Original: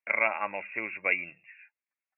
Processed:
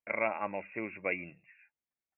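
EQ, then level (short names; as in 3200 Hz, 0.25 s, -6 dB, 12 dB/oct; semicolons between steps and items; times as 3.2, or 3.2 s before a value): tilt shelf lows +5 dB; low shelf 500 Hz +7 dB; -5.5 dB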